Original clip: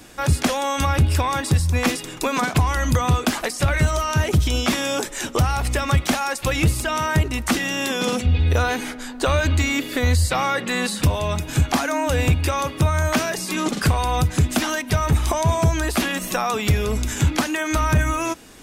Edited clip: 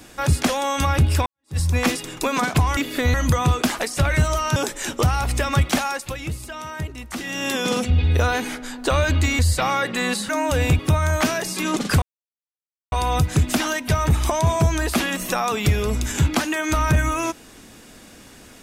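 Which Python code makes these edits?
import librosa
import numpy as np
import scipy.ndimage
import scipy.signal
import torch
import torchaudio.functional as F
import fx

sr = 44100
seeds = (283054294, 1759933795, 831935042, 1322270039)

y = fx.edit(x, sr, fx.fade_in_span(start_s=1.26, length_s=0.32, curve='exp'),
    fx.cut(start_s=4.19, length_s=0.73),
    fx.fade_down_up(start_s=6.19, length_s=1.67, db=-10.5, fade_s=0.34),
    fx.move(start_s=9.75, length_s=0.37, to_s=2.77),
    fx.cut(start_s=11.02, length_s=0.85),
    fx.cut(start_s=12.37, length_s=0.34),
    fx.insert_silence(at_s=13.94, length_s=0.9), tone=tone)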